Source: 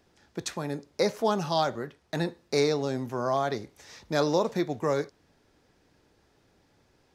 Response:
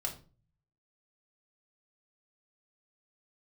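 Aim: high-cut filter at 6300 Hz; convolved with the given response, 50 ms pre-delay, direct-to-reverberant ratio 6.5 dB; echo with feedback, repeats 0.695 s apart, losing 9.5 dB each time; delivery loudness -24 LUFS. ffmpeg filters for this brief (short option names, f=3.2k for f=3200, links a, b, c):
-filter_complex "[0:a]lowpass=6.3k,aecho=1:1:695|1390|2085|2780:0.335|0.111|0.0365|0.012,asplit=2[a][b];[1:a]atrim=start_sample=2205,adelay=50[c];[b][c]afir=irnorm=-1:irlink=0,volume=-8dB[d];[a][d]amix=inputs=2:normalize=0,volume=4.5dB"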